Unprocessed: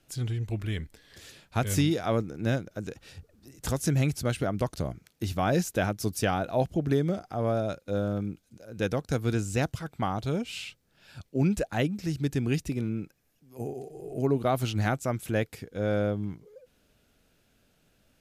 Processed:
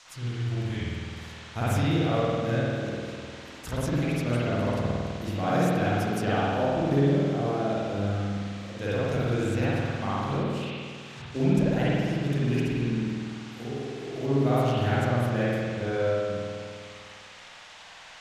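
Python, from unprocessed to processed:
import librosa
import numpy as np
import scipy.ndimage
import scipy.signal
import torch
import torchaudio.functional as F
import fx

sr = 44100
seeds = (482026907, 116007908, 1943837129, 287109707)

y = fx.dmg_noise_band(x, sr, seeds[0], low_hz=580.0, high_hz=6900.0, level_db=-47.0)
y = fx.transient(y, sr, attack_db=4, sustain_db=-11, at=(10.31, 11.55))
y = fx.rev_spring(y, sr, rt60_s=2.1, pass_ms=(50,), chirp_ms=45, drr_db=-9.5)
y = y * 10.0 ** (-7.5 / 20.0)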